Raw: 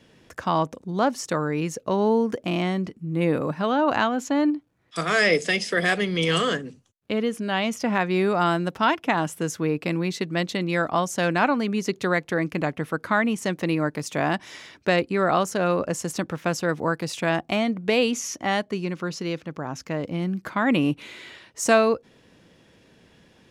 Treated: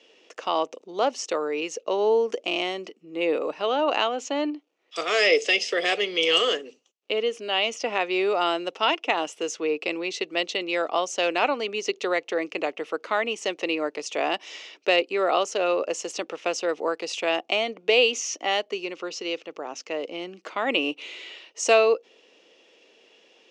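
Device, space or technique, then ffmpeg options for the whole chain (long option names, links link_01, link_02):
phone speaker on a table: -filter_complex "[0:a]highpass=frequency=360:width=0.5412,highpass=frequency=360:width=1.3066,equalizer=frequency=450:width_type=q:width=4:gain=3,equalizer=frequency=1000:width_type=q:width=4:gain=-4,equalizer=frequency=1600:width_type=q:width=4:gain=-9,equalizer=frequency=2800:width_type=q:width=4:gain=9,equalizer=frequency=6000:width_type=q:width=4:gain=3,lowpass=frequency=7100:width=0.5412,lowpass=frequency=7100:width=1.3066,asettb=1/sr,asplit=3[link_01][link_02][link_03];[link_01]atrim=end=2.284[link_04];[link_02]atrim=start=2.28:end=2.88,asetpts=PTS-STARTPTS,afade=type=in:duration=0.004:curve=qsin,afade=type=out:start_time=0.596:duration=0.004:curve=qsin,highshelf=frequency=7300:gain=7.5[link_05];[link_03]atrim=start=2.876[link_06];[link_04][link_05]acrossfade=duration=0.004:curve1=hsin:curve2=qsin[link_07];[link_07][link_06]acrossfade=duration=0.004:curve1=qsin:curve2=hsin"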